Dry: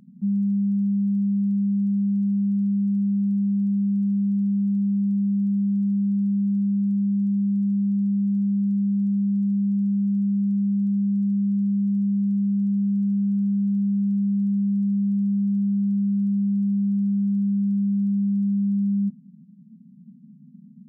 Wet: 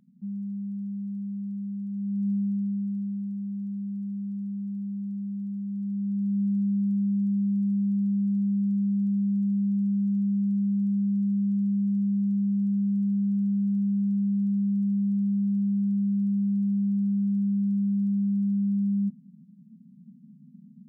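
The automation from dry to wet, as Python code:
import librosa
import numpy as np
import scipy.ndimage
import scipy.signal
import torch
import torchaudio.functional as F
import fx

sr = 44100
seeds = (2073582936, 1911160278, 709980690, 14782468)

y = fx.gain(x, sr, db=fx.line((1.89, -11.0), (2.29, -3.5), (3.34, -10.5), (5.65, -10.5), (6.41, -3.0)))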